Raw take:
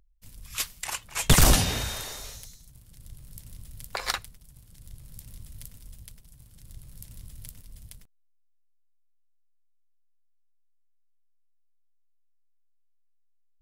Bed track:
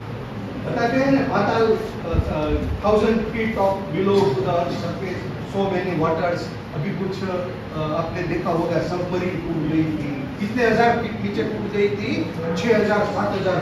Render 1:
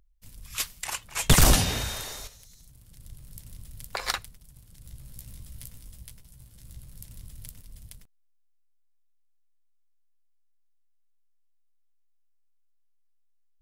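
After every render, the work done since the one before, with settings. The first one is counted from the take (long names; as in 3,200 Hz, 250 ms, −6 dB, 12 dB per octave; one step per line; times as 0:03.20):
0:02.27–0:02.90: downward compressor 12 to 1, threshold −47 dBFS
0:04.83–0:06.85: double-tracking delay 16 ms −5 dB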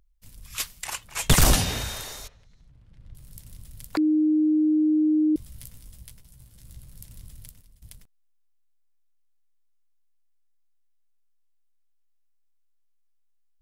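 0:02.28–0:03.15: low-pass filter 2,300 Hz
0:03.97–0:05.36: beep over 308 Hz −17.5 dBFS
0:07.33–0:07.82: fade out, to −15.5 dB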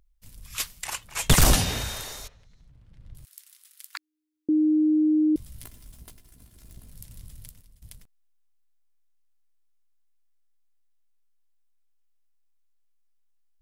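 0:03.25–0:04.49: inverse Chebyshev high-pass filter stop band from 380 Hz, stop band 60 dB
0:05.64–0:06.91: lower of the sound and its delayed copy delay 2.9 ms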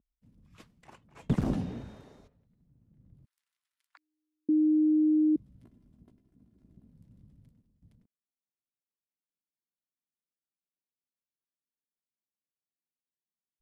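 resonant band-pass 230 Hz, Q 1.7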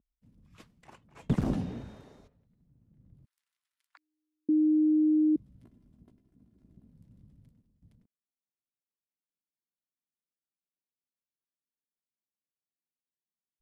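no processing that can be heard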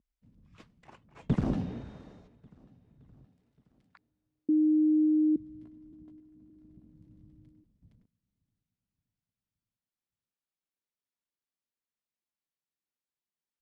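high-frequency loss of the air 70 metres
repeating echo 570 ms, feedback 54%, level −23.5 dB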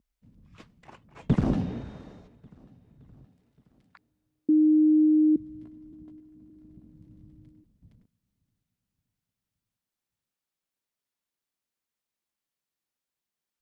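level +4.5 dB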